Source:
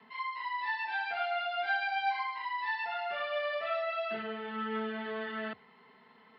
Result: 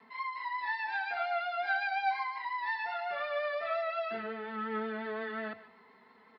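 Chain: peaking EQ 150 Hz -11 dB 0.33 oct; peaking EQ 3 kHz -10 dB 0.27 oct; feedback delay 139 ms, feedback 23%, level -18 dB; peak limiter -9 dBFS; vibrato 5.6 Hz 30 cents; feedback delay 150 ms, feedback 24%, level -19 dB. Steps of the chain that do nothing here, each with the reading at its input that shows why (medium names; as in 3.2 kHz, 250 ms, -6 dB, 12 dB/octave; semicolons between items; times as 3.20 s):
peak limiter -9 dBFS: peak at its input -21.0 dBFS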